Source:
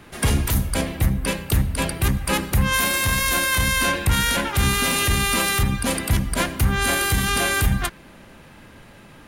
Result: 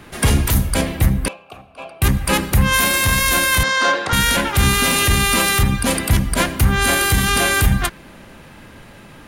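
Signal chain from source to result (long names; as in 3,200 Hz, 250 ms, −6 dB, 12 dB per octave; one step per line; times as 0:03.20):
0:01.28–0:02.02: formant filter a
0:03.63–0:04.13: loudspeaker in its box 360–6,300 Hz, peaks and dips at 500 Hz +4 dB, 760 Hz +5 dB, 1,300 Hz +7 dB, 2,500 Hz −8 dB
level +4.5 dB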